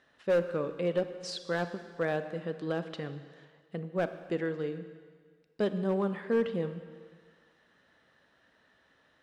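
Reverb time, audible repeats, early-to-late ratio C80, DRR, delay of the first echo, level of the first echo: 1.7 s, no echo audible, 12.0 dB, 10.0 dB, no echo audible, no echo audible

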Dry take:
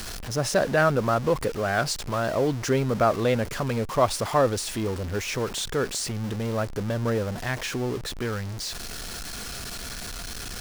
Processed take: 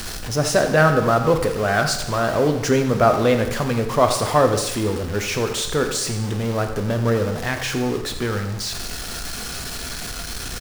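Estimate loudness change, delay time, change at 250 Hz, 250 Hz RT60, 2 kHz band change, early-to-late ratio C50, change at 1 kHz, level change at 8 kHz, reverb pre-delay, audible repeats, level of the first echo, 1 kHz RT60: +5.5 dB, 85 ms, +6.0 dB, 1.0 s, +6.0 dB, 7.5 dB, +6.0 dB, +5.5 dB, 5 ms, 1, −12.5 dB, 0.95 s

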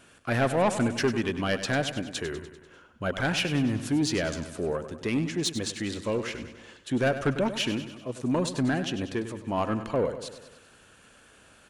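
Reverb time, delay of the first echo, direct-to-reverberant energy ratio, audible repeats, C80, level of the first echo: no reverb audible, 98 ms, no reverb audible, 5, no reverb audible, −11.5 dB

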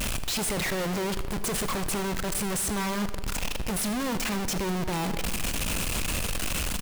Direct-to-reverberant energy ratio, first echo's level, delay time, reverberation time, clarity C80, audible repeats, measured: 10.5 dB, −18.0 dB, 79 ms, 2.0 s, 13.5 dB, 1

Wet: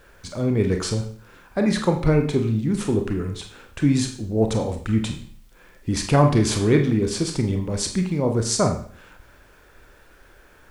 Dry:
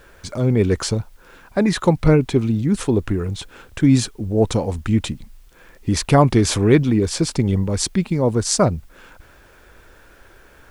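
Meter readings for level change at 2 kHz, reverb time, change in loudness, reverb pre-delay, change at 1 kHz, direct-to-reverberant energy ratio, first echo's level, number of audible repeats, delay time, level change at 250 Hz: −3.0 dB, 0.50 s, −3.5 dB, 27 ms, −3.5 dB, 4.0 dB, no echo audible, no echo audible, no echo audible, −3.5 dB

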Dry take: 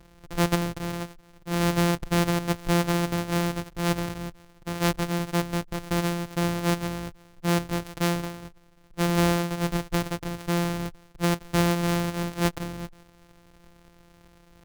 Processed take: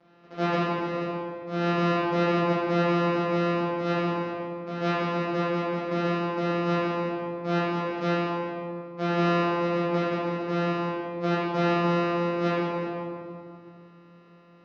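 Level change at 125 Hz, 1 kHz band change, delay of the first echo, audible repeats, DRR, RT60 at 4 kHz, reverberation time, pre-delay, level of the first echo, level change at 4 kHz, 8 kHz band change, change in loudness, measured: −3.0 dB, +3.0 dB, no echo audible, no echo audible, −10.0 dB, 1.2 s, 2.4 s, 6 ms, no echo audible, −4.5 dB, below −15 dB, 0.0 dB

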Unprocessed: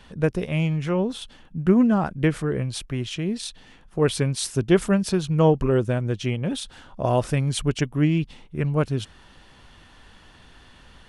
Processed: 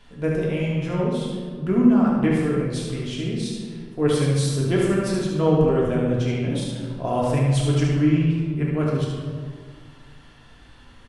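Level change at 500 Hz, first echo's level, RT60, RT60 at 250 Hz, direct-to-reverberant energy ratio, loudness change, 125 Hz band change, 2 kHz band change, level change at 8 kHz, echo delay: +1.0 dB, −4.0 dB, 1.8 s, 2.4 s, −4.5 dB, +1.5 dB, +2.0 dB, −0.5 dB, −2.0 dB, 73 ms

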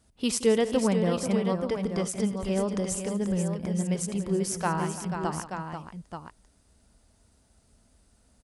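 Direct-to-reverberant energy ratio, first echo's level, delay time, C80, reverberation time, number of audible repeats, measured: no reverb audible, −18.0 dB, 79 ms, no reverb audible, no reverb audible, 5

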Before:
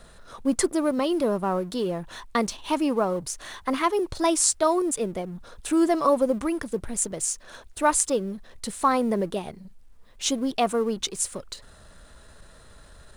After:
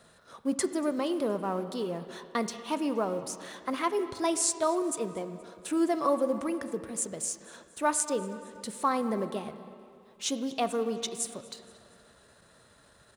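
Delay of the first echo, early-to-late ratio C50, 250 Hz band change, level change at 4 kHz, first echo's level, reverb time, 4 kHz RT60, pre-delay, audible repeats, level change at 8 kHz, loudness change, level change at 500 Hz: 236 ms, 11.0 dB, −5.5 dB, −6.0 dB, −23.0 dB, 2.5 s, 2.1 s, 10 ms, 3, −6.0 dB, −5.5 dB, −5.5 dB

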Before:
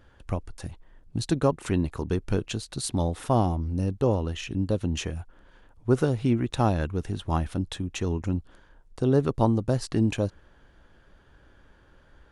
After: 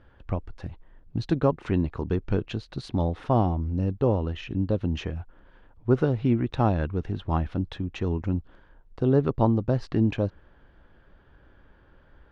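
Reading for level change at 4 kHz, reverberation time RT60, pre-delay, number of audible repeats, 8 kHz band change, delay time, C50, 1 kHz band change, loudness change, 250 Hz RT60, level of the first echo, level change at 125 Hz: −5.5 dB, no reverb audible, no reverb audible, no echo audible, below −15 dB, no echo audible, no reverb audible, 0.0 dB, +0.5 dB, no reverb audible, no echo audible, +1.0 dB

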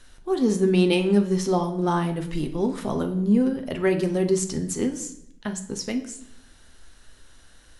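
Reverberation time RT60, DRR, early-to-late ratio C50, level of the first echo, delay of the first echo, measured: 0.75 s, 5.5 dB, 11.0 dB, no echo audible, no echo audible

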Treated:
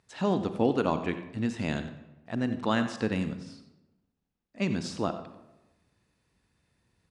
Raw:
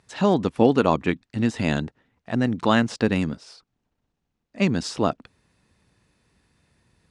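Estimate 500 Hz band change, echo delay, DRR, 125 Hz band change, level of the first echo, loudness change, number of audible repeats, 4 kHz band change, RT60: −7.5 dB, 91 ms, 9.0 dB, −7.5 dB, −13.5 dB, −7.5 dB, 1, −7.5 dB, 1.0 s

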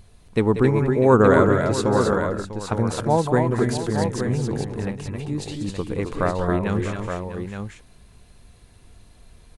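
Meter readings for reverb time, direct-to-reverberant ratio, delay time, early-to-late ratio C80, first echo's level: no reverb audible, no reverb audible, 187 ms, no reverb audible, −12.5 dB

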